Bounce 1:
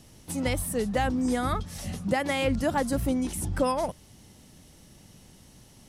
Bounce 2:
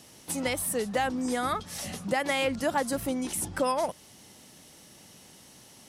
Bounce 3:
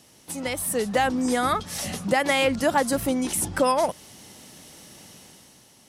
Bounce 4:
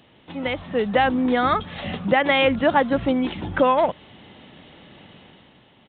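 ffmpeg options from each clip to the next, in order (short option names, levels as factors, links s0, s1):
-af "acompressor=threshold=0.0282:ratio=1.5,highpass=f=430:p=1,volume=1.68"
-af "dynaudnorm=f=100:g=13:m=2.51,volume=0.794"
-af "aresample=8000,aresample=44100,volume=1.5"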